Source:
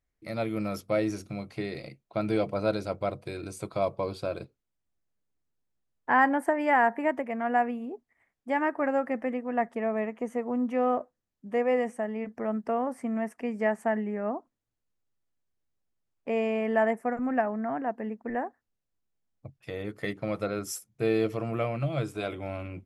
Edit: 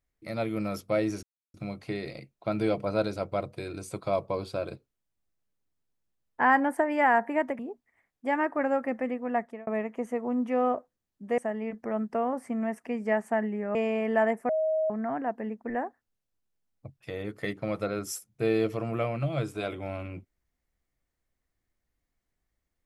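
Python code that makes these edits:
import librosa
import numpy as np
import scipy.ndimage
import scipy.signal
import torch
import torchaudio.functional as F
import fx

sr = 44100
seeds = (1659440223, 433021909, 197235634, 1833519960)

y = fx.edit(x, sr, fx.insert_silence(at_s=1.23, length_s=0.31),
    fx.cut(start_s=7.28, length_s=0.54),
    fx.fade_out_span(start_s=9.46, length_s=0.44, curve='qsin'),
    fx.cut(start_s=11.61, length_s=0.31),
    fx.cut(start_s=14.29, length_s=2.06),
    fx.bleep(start_s=17.09, length_s=0.41, hz=631.0, db=-23.5), tone=tone)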